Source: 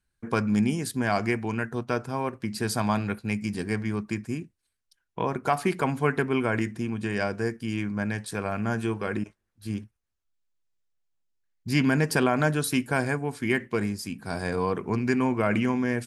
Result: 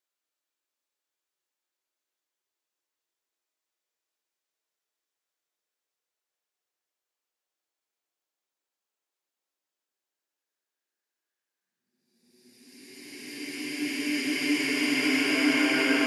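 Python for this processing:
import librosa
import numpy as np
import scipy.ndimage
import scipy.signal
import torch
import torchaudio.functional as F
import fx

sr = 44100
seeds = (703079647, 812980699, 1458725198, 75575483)

y = scipy.signal.sosfilt(scipy.signal.butter(4, 320.0, 'highpass', fs=sr, output='sos'), x)
y = fx.paulstretch(y, sr, seeds[0], factor=11.0, window_s=0.5, from_s=10.37)
y = y * librosa.db_to_amplitude(4.0)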